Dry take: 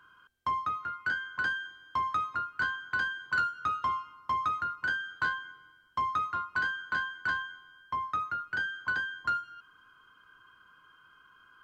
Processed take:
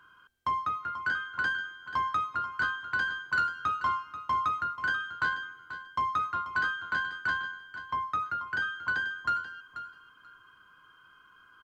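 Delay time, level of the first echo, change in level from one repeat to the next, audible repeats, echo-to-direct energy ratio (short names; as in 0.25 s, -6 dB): 0.486 s, -12.0 dB, -15.0 dB, 2, -12.0 dB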